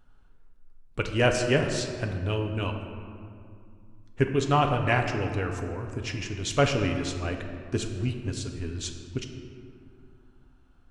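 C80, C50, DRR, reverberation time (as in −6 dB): 7.0 dB, 6.0 dB, 3.0 dB, 2.4 s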